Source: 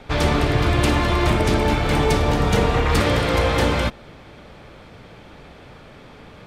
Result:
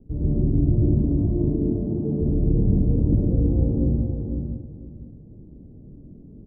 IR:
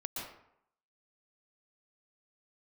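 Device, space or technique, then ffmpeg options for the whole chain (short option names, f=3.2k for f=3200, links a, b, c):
next room: -filter_complex "[0:a]asettb=1/sr,asplit=3[a][b][c];[a]atrim=end=1.164[d];[b]atrim=start=1.16:end=2.21,asetpts=PTS-STARTPTS,afade=t=in:d=0.004:c=qsin,afade=t=out:st=1.046:d=0.004:c=qsin,highpass=180[e];[c]atrim=start=2.206[f];[d][e]acrossfade=d=0.004:c1=hsin:c2=qsin[g];[g][f]acrossfade=d=0.004:c1=qsin:c2=hsin,lowpass=f=320:w=0.5412,lowpass=f=320:w=1.3066[h];[1:a]atrim=start_sample=2205[i];[h][i]afir=irnorm=-1:irlink=0,equalizer=f=2.5k:t=o:w=0.77:g=3,asplit=2[j][k];[k]adelay=507,lowpass=f=3.3k:p=1,volume=-6dB,asplit=2[l][m];[m]adelay=507,lowpass=f=3.3k:p=1,volume=0.21,asplit=2[n][o];[o]adelay=507,lowpass=f=3.3k:p=1,volume=0.21[p];[j][l][n][p]amix=inputs=4:normalize=0"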